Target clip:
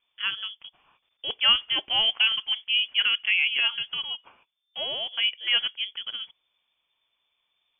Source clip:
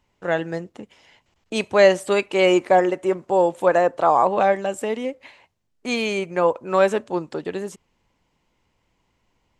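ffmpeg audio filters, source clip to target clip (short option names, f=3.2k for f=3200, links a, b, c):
-af "lowpass=f=2.5k:t=q:w=0.5098,lowpass=f=2.5k:t=q:w=0.6013,lowpass=f=2.5k:t=q:w=0.9,lowpass=f=2.5k:t=q:w=2.563,afreqshift=-2900,asetrate=54243,aresample=44100,volume=-6.5dB"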